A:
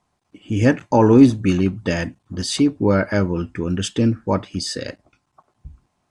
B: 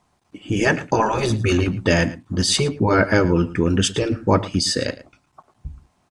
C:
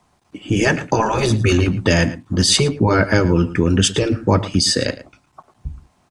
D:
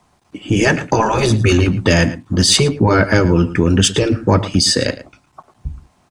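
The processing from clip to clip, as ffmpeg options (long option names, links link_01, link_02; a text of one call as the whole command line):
ffmpeg -i in.wav -filter_complex "[0:a]afftfilt=real='re*lt(hypot(re,im),0.794)':imag='im*lt(hypot(re,im),0.794)':win_size=1024:overlap=0.75,asplit=2[link_01][link_02];[link_02]adelay=110.8,volume=-17dB,highshelf=frequency=4000:gain=-2.49[link_03];[link_01][link_03]amix=inputs=2:normalize=0,volume=5.5dB" out.wav
ffmpeg -i in.wav -filter_complex "[0:a]acrossover=split=170|3000[link_01][link_02][link_03];[link_02]acompressor=threshold=-21dB:ratio=2[link_04];[link_01][link_04][link_03]amix=inputs=3:normalize=0,volume=4.5dB" out.wav
ffmpeg -i in.wav -af "asoftclip=type=tanh:threshold=-2.5dB,volume=3dB" out.wav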